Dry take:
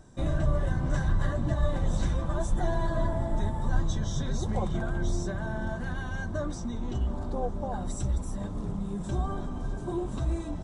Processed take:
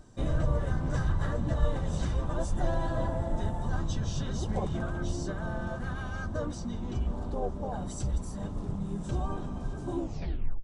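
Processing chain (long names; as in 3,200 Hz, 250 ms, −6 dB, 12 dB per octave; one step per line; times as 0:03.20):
turntable brake at the end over 0.65 s
pitch-shifted copies added −4 semitones −5 dB, −3 semitones −16 dB
level −2.5 dB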